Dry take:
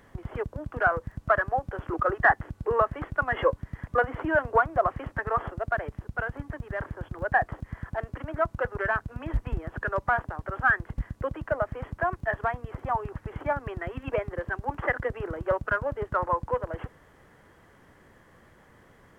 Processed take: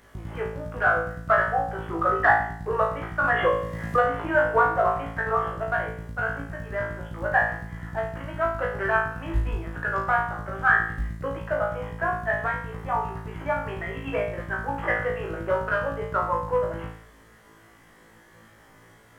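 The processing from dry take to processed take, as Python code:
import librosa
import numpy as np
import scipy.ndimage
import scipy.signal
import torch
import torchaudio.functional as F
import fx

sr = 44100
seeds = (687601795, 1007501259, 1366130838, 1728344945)

y = fx.high_shelf(x, sr, hz=2500.0, db=7.5)
y = fx.room_flutter(y, sr, wall_m=3.1, rt60_s=0.57)
y = fx.band_squash(y, sr, depth_pct=70, at=(3.24, 4.07))
y = F.gain(torch.from_numpy(y), -2.5).numpy()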